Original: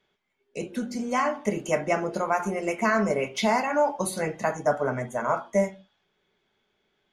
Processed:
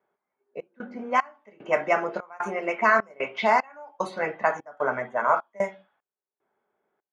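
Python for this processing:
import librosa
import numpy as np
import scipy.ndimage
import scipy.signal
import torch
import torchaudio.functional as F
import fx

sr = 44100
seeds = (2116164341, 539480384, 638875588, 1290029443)

y = fx.bandpass_q(x, sr, hz=1300.0, q=0.77)
y = fx.env_lowpass(y, sr, base_hz=900.0, full_db=-24.0)
y = fx.step_gate(y, sr, bpm=75, pattern='xxx.xx..xxx.', floor_db=-24.0, edge_ms=4.5)
y = y * 10.0 ** (6.0 / 20.0)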